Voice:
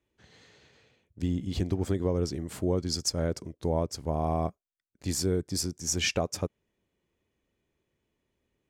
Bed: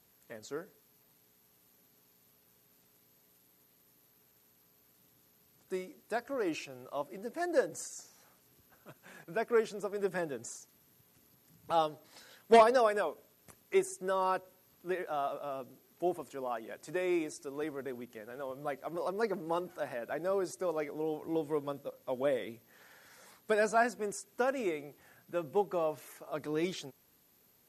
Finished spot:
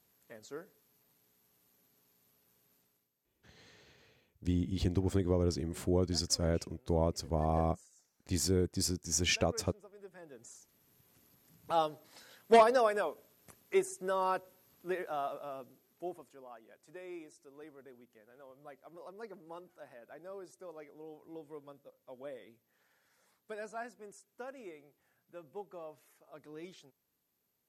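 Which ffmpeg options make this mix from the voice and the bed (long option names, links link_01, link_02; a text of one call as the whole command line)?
ffmpeg -i stem1.wav -i stem2.wav -filter_complex "[0:a]adelay=3250,volume=-2.5dB[link_01];[1:a]volume=13dB,afade=type=out:start_time=2.73:duration=0.38:silence=0.199526,afade=type=in:start_time=10.19:duration=0.94:silence=0.133352,afade=type=out:start_time=14.98:duration=1.47:silence=0.211349[link_02];[link_01][link_02]amix=inputs=2:normalize=0" out.wav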